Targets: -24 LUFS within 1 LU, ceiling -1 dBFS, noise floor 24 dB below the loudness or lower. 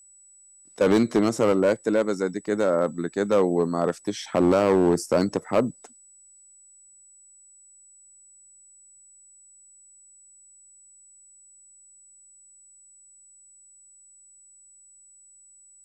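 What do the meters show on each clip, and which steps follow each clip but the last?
clipped 0.7%; flat tops at -13.0 dBFS; steady tone 7900 Hz; tone level -51 dBFS; loudness -23.0 LUFS; peak -13.0 dBFS; loudness target -24.0 LUFS
-> clip repair -13 dBFS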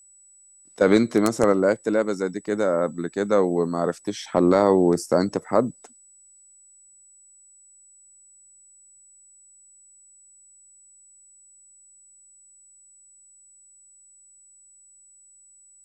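clipped 0.0%; steady tone 7900 Hz; tone level -51 dBFS
-> notch 7900 Hz, Q 30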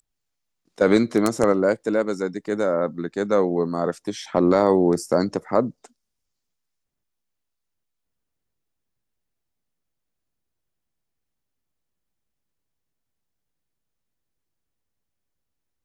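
steady tone none; loudness -22.0 LUFS; peak -4.0 dBFS; loudness target -24.0 LUFS
-> gain -2 dB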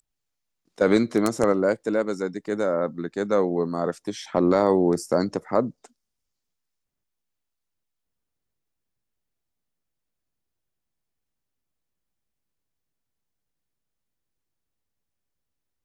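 loudness -24.0 LUFS; peak -6.0 dBFS; noise floor -82 dBFS

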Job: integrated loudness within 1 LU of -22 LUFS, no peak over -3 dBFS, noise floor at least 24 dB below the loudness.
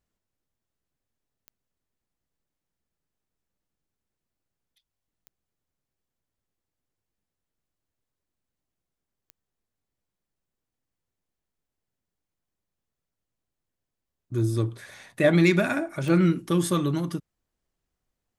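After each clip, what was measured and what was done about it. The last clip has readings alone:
clicks 4; loudness -24.0 LUFS; peak -7.5 dBFS; loudness target -22.0 LUFS
-> de-click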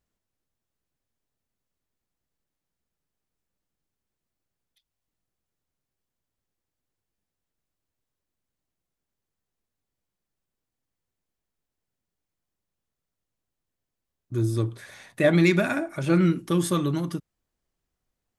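clicks 0; loudness -24.0 LUFS; peak -7.5 dBFS; loudness target -22.0 LUFS
-> gain +2 dB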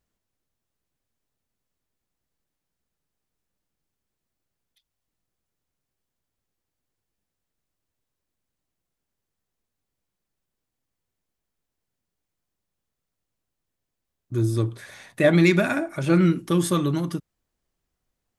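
loudness -22.0 LUFS; peak -5.5 dBFS; noise floor -84 dBFS

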